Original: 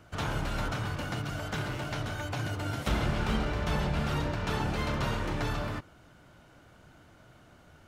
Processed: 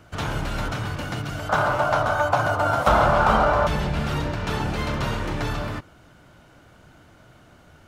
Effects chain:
0:01.49–0:03.67: flat-topped bell 880 Hz +14.5 dB
level +5 dB

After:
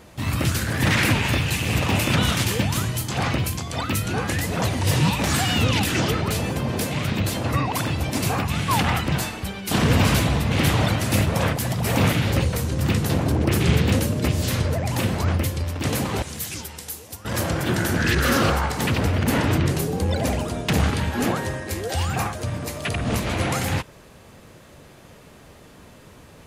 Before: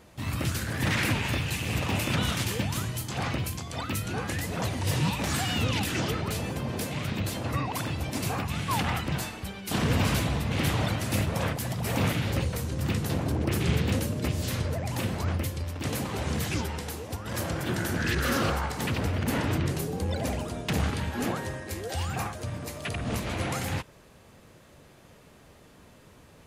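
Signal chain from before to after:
0:16.22–0:17.25: first-order pre-emphasis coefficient 0.8
level +7 dB

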